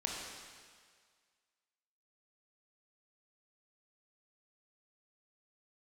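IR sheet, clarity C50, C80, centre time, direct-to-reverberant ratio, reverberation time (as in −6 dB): 0.0 dB, 1.5 dB, 97 ms, −2.0 dB, 1.8 s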